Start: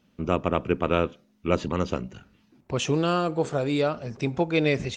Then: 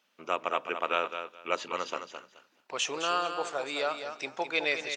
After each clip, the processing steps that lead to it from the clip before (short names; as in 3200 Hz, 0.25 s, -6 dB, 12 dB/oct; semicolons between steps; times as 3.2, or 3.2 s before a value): HPF 810 Hz 12 dB/oct; feedback echo 0.213 s, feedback 19%, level -8.5 dB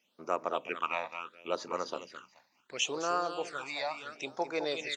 phaser stages 8, 0.72 Hz, lowest notch 390–3200 Hz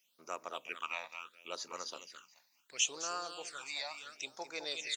pre-emphasis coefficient 0.9; gain +6 dB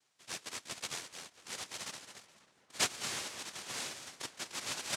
noise vocoder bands 1; darkening echo 0.543 s, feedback 62%, low-pass 2000 Hz, level -18 dB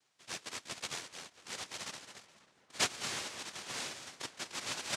high shelf 12000 Hz -11.5 dB; gain +1 dB